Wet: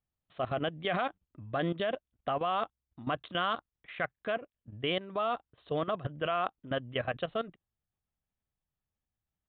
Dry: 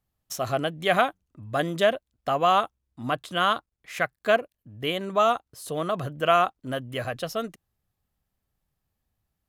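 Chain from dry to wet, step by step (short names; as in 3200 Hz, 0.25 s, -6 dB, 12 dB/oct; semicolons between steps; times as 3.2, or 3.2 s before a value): level quantiser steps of 15 dB; downsampling 8000 Hz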